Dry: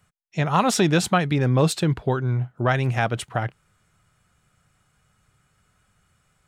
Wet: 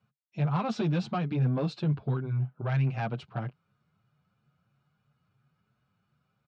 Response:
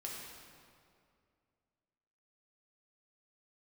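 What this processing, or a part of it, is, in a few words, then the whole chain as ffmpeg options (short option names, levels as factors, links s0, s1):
barber-pole flanger into a guitar amplifier: -filter_complex "[0:a]asettb=1/sr,asplit=3[s0][s1][s2];[s0]atrim=end=2.184[s3];[s1]atrim=start=2.18:end=3.08,asetpts=PTS-STARTPTS,afade=t=in:d=0.004:c=qsin,afade=t=out:st=0.896:d=0.004:c=qsin,equalizer=f=2300:t=o:w=1.1:g=4[s4];[s2]atrim=start=3.076[s5];[s3][s4]acrossfade=d=0.004:c1=hsin:c2=qsin[s6];[s6][s5]acrossfade=d=0.004:c1=qsin:c2=hsin,asplit=2[s7][s8];[s8]adelay=7.1,afreqshift=3[s9];[s7][s9]amix=inputs=2:normalize=1,asoftclip=type=tanh:threshold=0.119,highpass=100,equalizer=f=140:t=q:w=4:g=9,equalizer=f=220:t=q:w=4:g=6,equalizer=f=1900:t=q:w=4:g=-10,equalizer=f=3300:t=q:w=4:g=-5,lowpass=f=4300:w=0.5412,lowpass=f=4300:w=1.3066,volume=0.501"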